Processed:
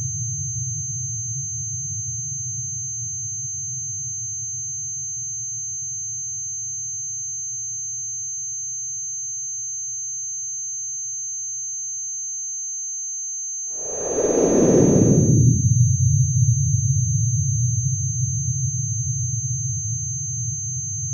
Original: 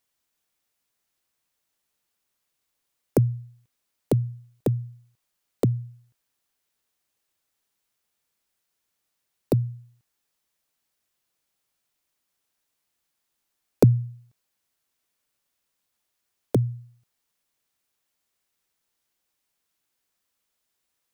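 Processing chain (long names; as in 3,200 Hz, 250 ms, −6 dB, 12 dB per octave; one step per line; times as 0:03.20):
extreme stretch with random phases 38×, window 0.05 s, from 0:04.28
switching amplifier with a slow clock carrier 6,300 Hz
level +4.5 dB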